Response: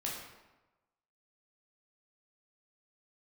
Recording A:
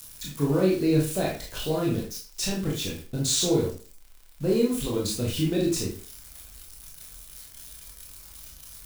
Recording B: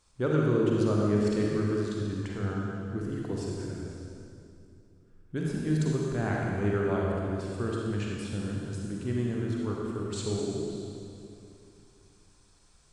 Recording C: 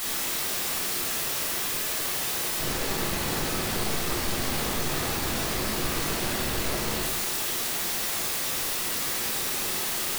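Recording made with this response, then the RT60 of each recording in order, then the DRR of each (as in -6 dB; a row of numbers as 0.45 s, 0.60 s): C; 0.40 s, 2.6 s, 1.1 s; -3.5 dB, -3.0 dB, -4.0 dB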